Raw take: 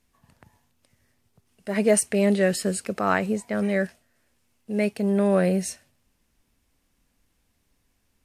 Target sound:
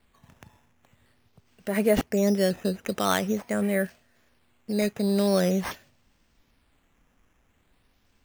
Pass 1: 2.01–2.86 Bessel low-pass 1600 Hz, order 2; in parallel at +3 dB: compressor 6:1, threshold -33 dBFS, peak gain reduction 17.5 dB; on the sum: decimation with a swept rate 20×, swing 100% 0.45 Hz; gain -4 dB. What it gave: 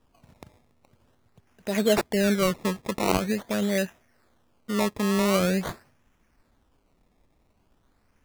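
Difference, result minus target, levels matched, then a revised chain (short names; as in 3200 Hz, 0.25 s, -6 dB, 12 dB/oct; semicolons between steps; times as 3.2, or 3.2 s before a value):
decimation with a swept rate: distortion +8 dB
2.01–2.86 Bessel low-pass 1600 Hz, order 2; in parallel at +3 dB: compressor 6:1, threshold -33 dBFS, peak gain reduction 17.5 dB; on the sum: decimation with a swept rate 7×, swing 100% 0.45 Hz; gain -4 dB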